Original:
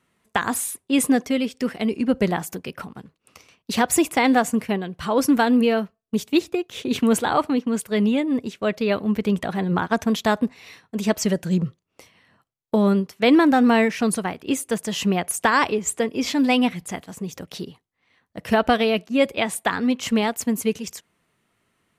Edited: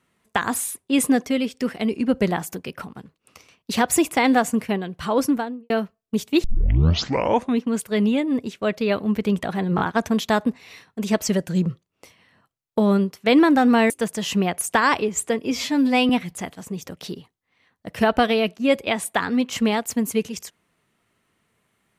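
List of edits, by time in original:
5.11–5.70 s: studio fade out
6.44 s: tape start 1.20 s
9.76 s: stutter 0.02 s, 3 plays
13.86–14.60 s: delete
16.21–16.60 s: stretch 1.5×

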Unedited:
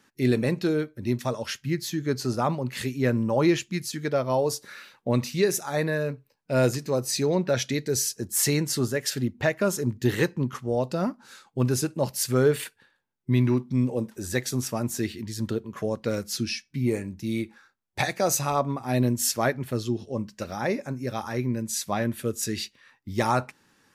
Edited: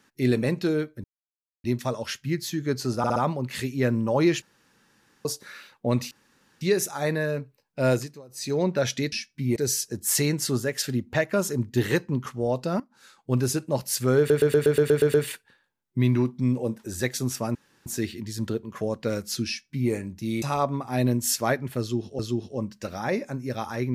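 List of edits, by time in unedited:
1.04 s: insert silence 0.60 s
2.38 s: stutter 0.06 s, 4 plays
3.64–4.47 s: room tone
5.33 s: insert room tone 0.50 s
6.61–7.33 s: dip -23 dB, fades 0.33 s
11.08–11.59 s: fade in, from -17.5 dB
12.46 s: stutter 0.12 s, 9 plays
14.87 s: insert room tone 0.31 s
16.48–16.92 s: copy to 7.84 s
17.43–18.38 s: delete
19.76–20.15 s: loop, 2 plays

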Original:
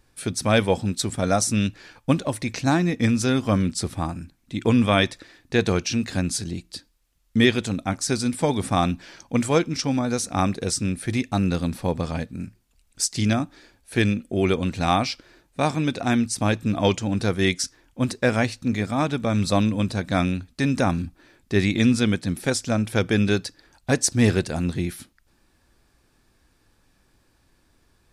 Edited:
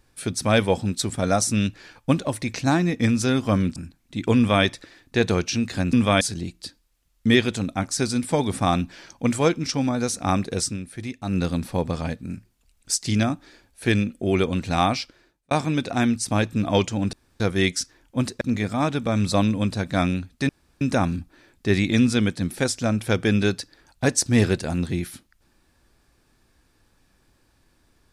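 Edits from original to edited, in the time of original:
3.76–4.14 s: delete
4.74–5.02 s: copy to 6.31 s
10.75–11.48 s: dip -8 dB, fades 0.13 s
15.03–15.61 s: fade out
17.23 s: insert room tone 0.27 s
18.24–18.59 s: delete
20.67 s: insert room tone 0.32 s

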